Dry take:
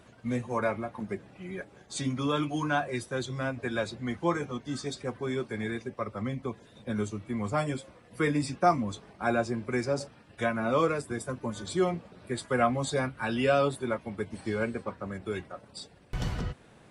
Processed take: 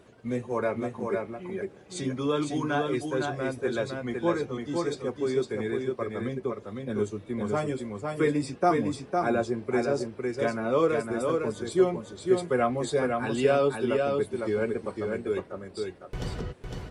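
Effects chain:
parametric band 410 Hz +9 dB 0.76 octaves
on a send: single-tap delay 506 ms −4 dB
on the sum: level −2.5 dB

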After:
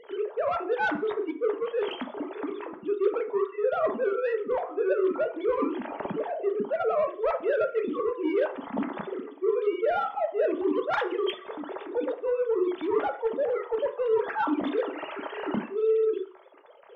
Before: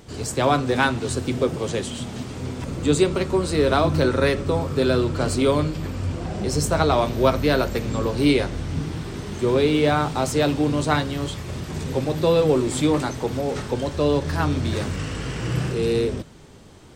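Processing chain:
three sine waves on the formant tracks
parametric band 710 Hz +8 dB 2.4 octaves
reversed playback
downward compressor 8 to 1, threshold −23 dBFS, peak gain reduction 21.5 dB
reversed playback
reverb reduction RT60 1.3 s
soft clipping −20 dBFS, distortion −20 dB
on a send: convolution reverb RT60 0.50 s, pre-delay 3 ms, DRR 5 dB

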